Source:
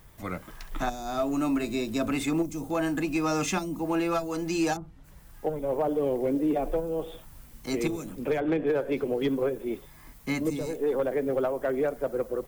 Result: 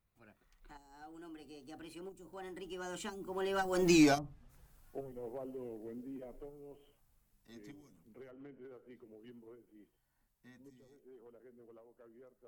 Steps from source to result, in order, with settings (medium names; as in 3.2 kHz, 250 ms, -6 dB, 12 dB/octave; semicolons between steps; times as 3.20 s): Doppler pass-by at 3.92 s, 47 m/s, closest 5.9 m; trim +3 dB